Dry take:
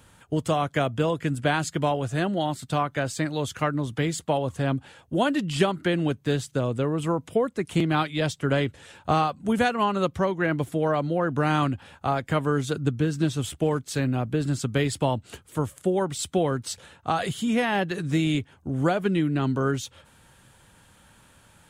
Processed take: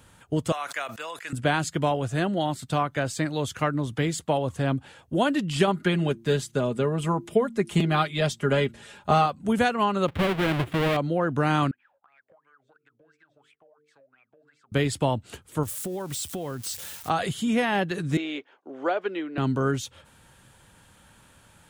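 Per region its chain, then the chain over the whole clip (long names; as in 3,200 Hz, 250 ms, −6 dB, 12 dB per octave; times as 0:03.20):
0:00.52–0:01.33: high-pass filter 1,200 Hz + notch filter 3,200 Hz, Q 6.2 + level that may fall only so fast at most 81 dB per second
0:05.67–0:09.26: comb filter 4.9 ms, depth 58% + hum removal 114.1 Hz, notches 3
0:10.08–0:10.97: each half-wave held at its own peak + high shelf with overshoot 4,300 Hz −10.5 dB, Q 1.5 + downward compressor 2.5 to 1, threshold −22 dBFS
0:11.71–0:14.72: LFO wah 2.9 Hz 540–2,400 Hz, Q 19 + mains-hum notches 50/100/150/200/250/300/350/400/450 Hz + downward compressor 16 to 1, threshold −55 dBFS
0:15.63–0:17.10: spike at every zero crossing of −30 dBFS + downward compressor 10 to 1, threshold −28 dBFS
0:18.17–0:19.38: high-pass filter 370 Hz 24 dB per octave + high-frequency loss of the air 200 metres
whole clip: no processing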